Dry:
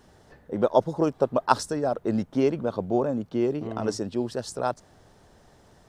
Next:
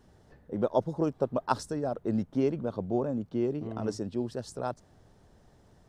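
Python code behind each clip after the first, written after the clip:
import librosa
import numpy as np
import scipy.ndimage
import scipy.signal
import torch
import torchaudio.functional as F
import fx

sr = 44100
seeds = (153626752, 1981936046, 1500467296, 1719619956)

y = fx.low_shelf(x, sr, hz=360.0, db=7.5)
y = y * librosa.db_to_amplitude(-8.5)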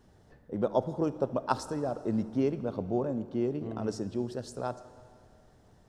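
y = fx.rev_plate(x, sr, seeds[0], rt60_s=2.3, hf_ratio=0.95, predelay_ms=0, drr_db=13.0)
y = y * librosa.db_to_amplitude(-1.0)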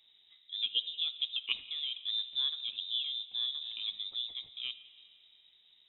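y = fx.freq_invert(x, sr, carrier_hz=3800)
y = y * librosa.db_to_amplitude(-5.5)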